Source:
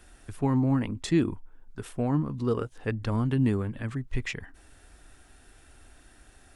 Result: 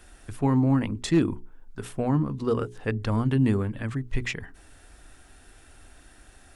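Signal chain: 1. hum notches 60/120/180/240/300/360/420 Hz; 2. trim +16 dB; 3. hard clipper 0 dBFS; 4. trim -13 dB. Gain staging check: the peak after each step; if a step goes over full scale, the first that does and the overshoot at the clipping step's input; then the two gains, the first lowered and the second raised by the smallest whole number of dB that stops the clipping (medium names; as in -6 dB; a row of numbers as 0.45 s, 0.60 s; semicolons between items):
-12.5 dBFS, +3.5 dBFS, 0.0 dBFS, -13.0 dBFS; step 2, 3.5 dB; step 2 +12 dB, step 4 -9 dB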